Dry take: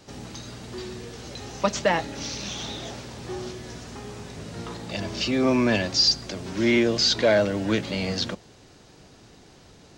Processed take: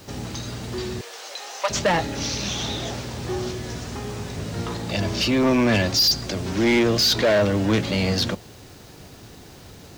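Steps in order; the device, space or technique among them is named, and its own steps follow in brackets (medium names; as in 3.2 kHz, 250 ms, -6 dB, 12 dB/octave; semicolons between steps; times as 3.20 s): open-reel tape (saturation -20.5 dBFS, distortion -11 dB; peaking EQ 89 Hz +5 dB 0.94 oct; white noise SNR 32 dB); 1.01–1.70 s: high-pass 570 Hz 24 dB/octave; trim +6 dB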